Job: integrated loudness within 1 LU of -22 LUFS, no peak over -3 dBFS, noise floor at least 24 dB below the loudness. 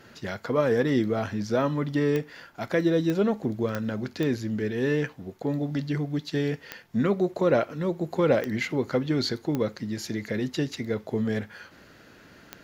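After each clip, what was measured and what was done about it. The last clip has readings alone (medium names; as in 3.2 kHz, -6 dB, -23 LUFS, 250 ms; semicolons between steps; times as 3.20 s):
clicks found 8; loudness -27.0 LUFS; peak level -8.5 dBFS; loudness target -22.0 LUFS
-> de-click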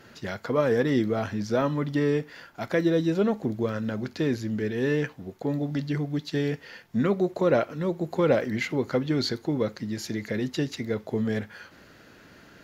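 clicks found 0; loudness -27.0 LUFS; peak level -8.5 dBFS; loudness target -22.0 LUFS
-> trim +5 dB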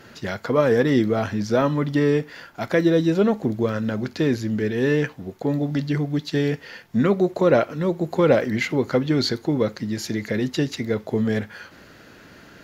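loudness -22.0 LUFS; peak level -3.5 dBFS; noise floor -48 dBFS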